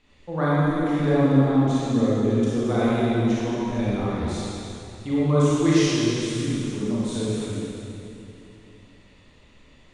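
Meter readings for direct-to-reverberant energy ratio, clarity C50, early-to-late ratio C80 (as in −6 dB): −9.5 dB, −6.5 dB, −4.0 dB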